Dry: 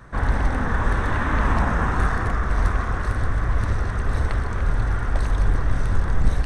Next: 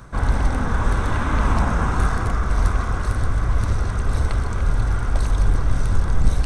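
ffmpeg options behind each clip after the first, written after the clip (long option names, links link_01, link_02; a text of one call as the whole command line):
ffmpeg -i in.wav -af "areverse,acompressor=mode=upward:threshold=-21dB:ratio=2.5,areverse,bass=frequency=250:gain=2,treble=frequency=4000:gain=7,bandreject=frequency=1800:width=6.4" out.wav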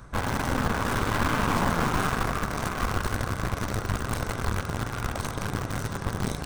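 ffmpeg -i in.wav -filter_complex "[0:a]afftfilt=real='re*lt(hypot(re,im),0.891)':imag='im*lt(hypot(re,im),0.891)':win_size=1024:overlap=0.75,asplit=2[link_01][link_02];[link_02]acrusher=bits=3:mix=0:aa=0.000001,volume=-8dB[link_03];[link_01][link_03]amix=inputs=2:normalize=0,aeval=exprs='(tanh(7.08*val(0)+0.75)-tanh(0.75))/7.08':channel_layout=same" out.wav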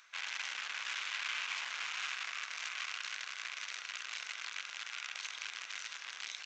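ffmpeg -i in.wav -af "aresample=16000,aresample=44100,alimiter=limit=-19.5dB:level=0:latency=1:release=60,highpass=frequency=2500:width_type=q:width=2.3,volume=-3dB" out.wav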